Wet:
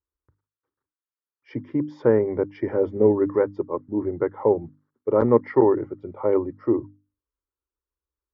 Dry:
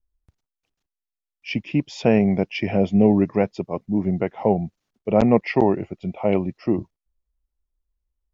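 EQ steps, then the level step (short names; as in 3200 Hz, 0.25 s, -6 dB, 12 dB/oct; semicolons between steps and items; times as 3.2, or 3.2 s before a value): Chebyshev band-pass 120–1500 Hz, order 2; notches 50/100/150/200/250/300 Hz; fixed phaser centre 700 Hz, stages 6; +4.0 dB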